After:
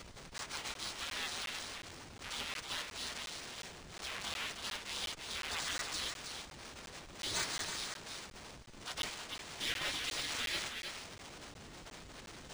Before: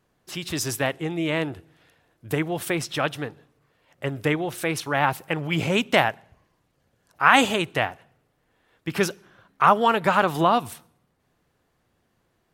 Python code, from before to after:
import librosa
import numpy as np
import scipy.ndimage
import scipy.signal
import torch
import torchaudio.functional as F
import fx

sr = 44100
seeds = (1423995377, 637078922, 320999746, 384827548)

p1 = x + 0.5 * 10.0 ** (-28.0 / 20.0) * np.sign(x)
p2 = fx.spec_gate(p1, sr, threshold_db=-30, keep='weak')
p3 = p2 + fx.echo_single(p2, sr, ms=318, db=-7.5, dry=0)
p4 = fx.dynamic_eq(p3, sr, hz=2900.0, q=0.73, threshold_db=-55.0, ratio=4.0, max_db=4)
p5 = fx.schmitt(p4, sr, flips_db=-50.5)
p6 = p4 + F.gain(torch.from_numpy(p5), -10.5).numpy()
p7 = fx.buffer_crackle(p6, sr, first_s=0.38, period_s=0.36, block=512, kind='zero')
y = np.interp(np.arange(len(p7)), np.arange(len(p7))[::3], p7[::3])